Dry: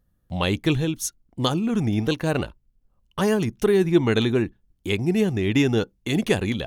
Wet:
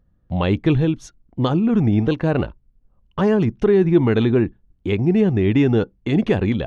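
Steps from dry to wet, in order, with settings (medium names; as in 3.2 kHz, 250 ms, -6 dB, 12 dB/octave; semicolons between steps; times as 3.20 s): in parallel at +1.5 dB: peak limiter -14 dBFS, peak gain reduction 8 dB; on the sum: tape spacing loss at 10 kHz 31 dB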